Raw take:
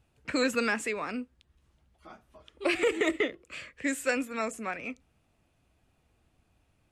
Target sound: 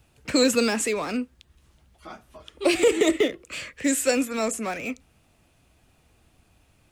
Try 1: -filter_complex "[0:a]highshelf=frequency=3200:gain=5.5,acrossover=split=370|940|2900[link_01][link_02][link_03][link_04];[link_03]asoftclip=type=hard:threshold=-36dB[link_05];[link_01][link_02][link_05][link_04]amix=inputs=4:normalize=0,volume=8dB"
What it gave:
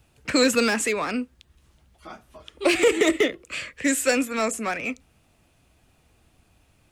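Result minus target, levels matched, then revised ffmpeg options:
hard clipping: distortion −5 dB
-filter_complex "[0:a]highshelf=frequency=3200:gain=5.5,acrossover=split=370|940|2900[link_01][link_02][link_03][link_04];[link_03]asoftclip=type=hard:threshold=-47.5dB[link_05];[link_01][link_02][link_05][link_04]amix=inputs=4:normalize=0,volume=8dB"

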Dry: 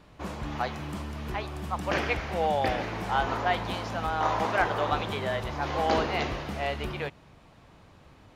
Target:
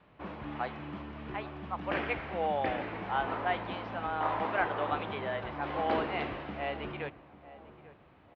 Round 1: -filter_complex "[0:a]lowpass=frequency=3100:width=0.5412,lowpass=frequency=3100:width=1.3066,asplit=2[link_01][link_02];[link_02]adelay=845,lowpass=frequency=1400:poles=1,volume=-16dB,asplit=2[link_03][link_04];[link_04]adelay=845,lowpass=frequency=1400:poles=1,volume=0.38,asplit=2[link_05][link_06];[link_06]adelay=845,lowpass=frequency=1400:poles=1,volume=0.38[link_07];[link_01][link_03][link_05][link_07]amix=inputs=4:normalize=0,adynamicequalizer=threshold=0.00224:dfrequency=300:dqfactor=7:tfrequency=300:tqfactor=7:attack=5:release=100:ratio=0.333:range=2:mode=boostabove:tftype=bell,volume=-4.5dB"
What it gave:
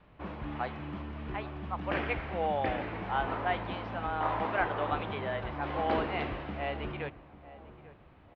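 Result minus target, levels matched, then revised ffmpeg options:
125 Hz band +4.0 dB
-filter_complex "[0:a]lowpass=frequency=3100:width=0.5412,lowpass=frequency=3100:width=1.3066,asplit=2[link_01][link_02];[link_02]adelay=845,lowpass=frequency=1400:poles=1,volume=-16dB,asplit=2[link_03][link_04];[link_04]adelay=845,lowpass=frequency=1400:poles=1,volume=0.38,asplit=2[link_05][link_06];[link_06]adelay=845,lowpass=frequency=1400:poles=1,volume=0.38[link_07];[link_01][link_03][link_05][link_07]amix=inputs=4:normalize=0,adynamicequalizer=threshold=0.00224:dfrequency=300:dqfactor=7:tfrequency=300:tqfactor=7:attack=5:release=100:ratio=0.333:range=2:mode=boostabove:tftype=bell,highpass=frequency=140:poles=1,volume=-4.5dB"

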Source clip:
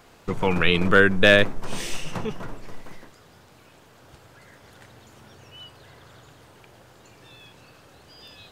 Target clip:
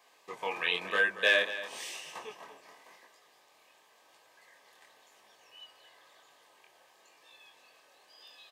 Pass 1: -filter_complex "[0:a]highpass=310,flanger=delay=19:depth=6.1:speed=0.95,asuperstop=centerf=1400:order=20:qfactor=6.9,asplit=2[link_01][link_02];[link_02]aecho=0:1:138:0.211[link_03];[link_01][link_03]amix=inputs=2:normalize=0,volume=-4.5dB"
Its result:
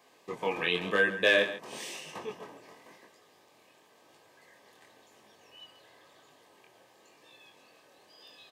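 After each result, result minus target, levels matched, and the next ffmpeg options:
250 Hz band +10.5 dB; echo 95 ms early
-filter_complex "[0:a]highpass=670,flanger=delay=19:depth=6.1:speed=0.95,asuperstop=centerf=1400:order=20:qfactor=6.9,asplit=2[link_01][link_02];[link_02]aecho=0:1:138:0.211[link_03];[link_01][link_03]amix=inputs=2:normalize=0,volume=-4.5dB"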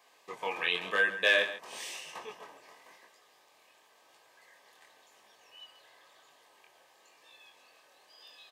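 echo 95 ms early
-filter_complex "[0:a]highpass=670,flanger=delay=19:depth=6.1:speed=0.95,asuperstop=centerf=1400:order=20:qfactor=6.9,asplit=2[link_01][link_02];[link_02]aecho=0:1:233:0.211[link_03];[link_01][link_03]amix=inputs=2:normalize=0,volume=-4.5dB"

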